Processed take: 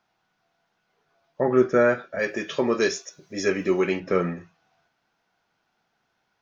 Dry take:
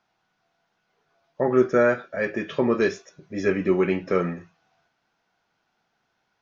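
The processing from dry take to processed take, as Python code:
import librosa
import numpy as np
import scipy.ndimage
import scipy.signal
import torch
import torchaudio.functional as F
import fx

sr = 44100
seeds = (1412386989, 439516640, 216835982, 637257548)

y = fx.bass_treble(x, sr, bass_db=-6, treble_db=14, at=(2.19, 4.0))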